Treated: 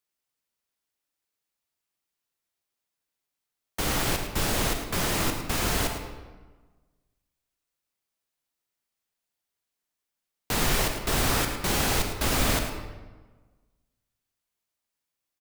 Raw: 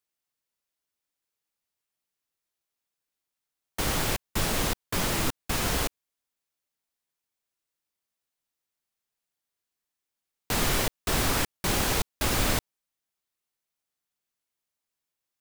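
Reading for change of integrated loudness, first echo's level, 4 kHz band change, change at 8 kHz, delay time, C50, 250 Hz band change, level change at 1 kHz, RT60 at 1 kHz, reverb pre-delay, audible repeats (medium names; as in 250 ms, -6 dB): +1.0 dB, -10.5 dB, +1.0 dB, +1.0 dB, 107 ms, 5.0 dB, +1.5 dB, +1.5 dB, 1.3 s, 33 ms, 1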